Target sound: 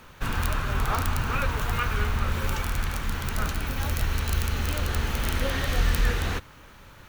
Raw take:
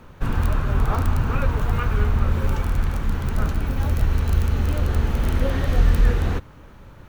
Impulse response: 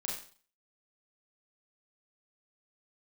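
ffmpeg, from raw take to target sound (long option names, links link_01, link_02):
-af "tiltshelf=frequency=1100:gain=-7"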